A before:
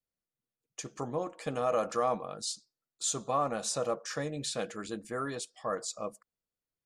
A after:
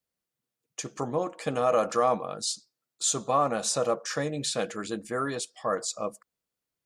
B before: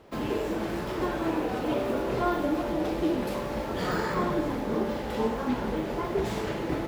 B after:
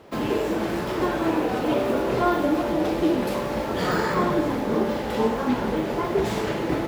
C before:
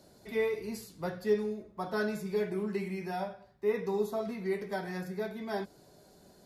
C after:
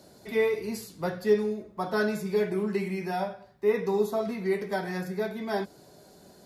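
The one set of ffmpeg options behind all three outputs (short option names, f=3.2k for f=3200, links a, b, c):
-af "highpass=f=78:p=1,volume=5.5dB"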